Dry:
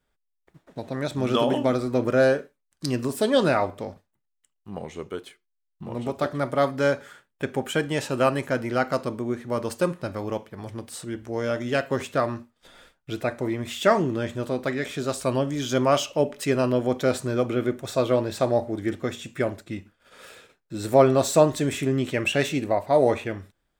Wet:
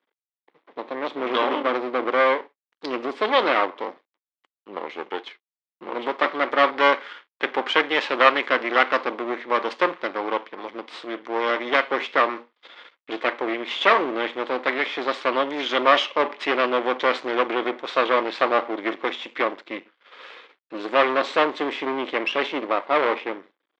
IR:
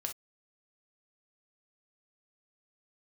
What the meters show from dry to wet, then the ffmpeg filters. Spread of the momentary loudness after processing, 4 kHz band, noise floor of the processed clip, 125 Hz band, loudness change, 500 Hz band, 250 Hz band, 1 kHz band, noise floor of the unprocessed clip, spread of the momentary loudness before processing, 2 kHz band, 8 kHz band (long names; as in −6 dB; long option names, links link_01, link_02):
16 LU, +6.0 dB, below −85 dBFS, below −20 dB, +2.0 dB, −0.5 dB, −4.0 dB, +7.0 dB, −77 dBFS, 16 LU, +8.5 dB, below −15 dB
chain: -filter_complex "[0:a]acrossover=split=620[link_01][link_02];[link_01]aeval=exprs='0.376*(cos(1*acos(clip(val(0)/0.376,-1,1)))-cos(1*PI/2))+0.133*(cos(5*acos(clip(val(0)/0.376,-1,1)))-cos(5*PI/2))':channel_layout=same[link_03];[link_02]dynaudnorm=framelen=500:gausssize=17:maxgain=11dB[link_04];[link_03][link_04]amix=inputs=2:normalize=0,aeval=exprs='max(val(0),0)':channel_layout=same,highpass=frequency=340:width=0.5412,highpass=frequency=340:width=1.3066,equalizer=frequency=400:width_type=q:width=4:gain=-4,equalizer=frequency=640:width_type=q:width=4:gain=-6,equalizer=frequency=1100:width_type=q:width=4:gain=5,equalizer=frequency=2100:width_type=q:width=4:gain=6,equalizer=frequency=3300:width_type=q:width=4:gain=4,lowpass=frequency=4100:width=0.5412,lowpass=frequency=4100:width=1.3066,volume=2dB"